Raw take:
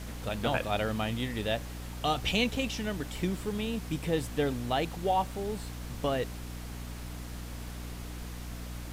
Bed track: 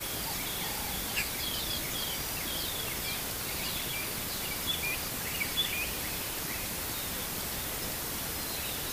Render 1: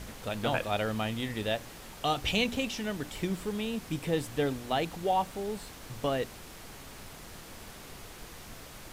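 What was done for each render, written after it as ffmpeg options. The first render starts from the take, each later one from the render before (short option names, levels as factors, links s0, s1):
-af "bandreject=f=60:t=h:w=4,bandreject=f=120:t=h:w=4,bandreject=f=180:t=h:w=4,bandreject=f=240:t=h:w=4,bandreject=f=300:t=h:w=4"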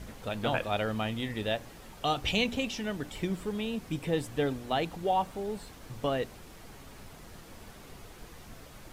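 -af "afftdn=nr=6:nf=-48"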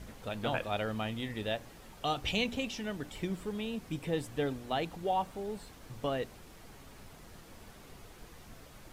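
-af "volume=0.668"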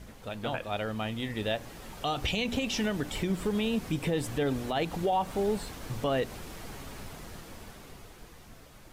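-af "dynaudnorm=f=200:g=17:m=3.35,alimiter=limit=0.1:level=0:latency=1:release=121"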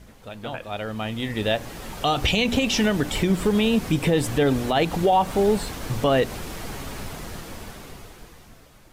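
-af "dynaudnorm=f=260:g=9:m=2.82"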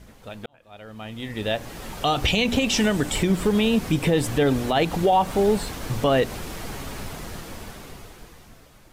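-filter_complex "[0:a]asettb=1/sr,asplit=3[s0][s1][s2];[s0]atrim=end=2.694[s3];[s1]atrim=start=2.69:end=3.23,asetpts=PTS-STARTPTS,afade=t=in:d=0.004:c=qsin,afade=t=out:st=0.536:d=0.004:c=qsin,equalizer=f=8000:w=3:g=7[s4];[s2]atrim=start=3.226[s5];[s3][s4]acrossfade=d=0.004:c1=hsin:c2=qsin[s6];[s6][s5]acrossfade=d=0.004:c1=qsin:c2=hsin,asplit=2[s7][s8];[s7]atrim=end=0.46,asetpts=PTS-STARTPTS,afade=t=out:st=0.456:d=0.004:c=hsin[s9];[s8]atrim=start=0.46,asetpts=PTS-STARTPTS,afade=t=in:d=1.37[s10];[s9][s10]concat=n=2:v=0:a=1"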